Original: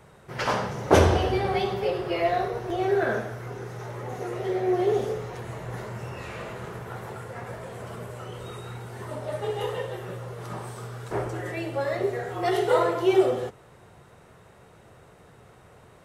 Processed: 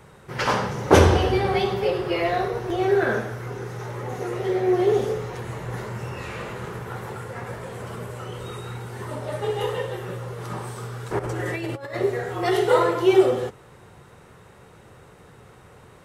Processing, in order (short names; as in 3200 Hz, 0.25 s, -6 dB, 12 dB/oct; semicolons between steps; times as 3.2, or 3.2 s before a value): bell 660 Hz -7 dB 0.22 oct; 11.19–11.95 negative-ratio compressor -33 dBFS, ratio -0.5; gain +4 dB